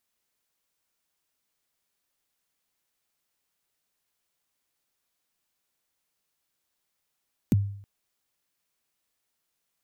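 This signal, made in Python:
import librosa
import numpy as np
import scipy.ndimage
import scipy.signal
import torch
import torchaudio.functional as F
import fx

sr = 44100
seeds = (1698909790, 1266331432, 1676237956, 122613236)

y = fx.drum_kick(sr, seeds[0], length_s=0.32, level_db=-15.0, start_hz=300.0, end_hz=100.0, sweep_ms=23.0, decay_s=0.61, click=True)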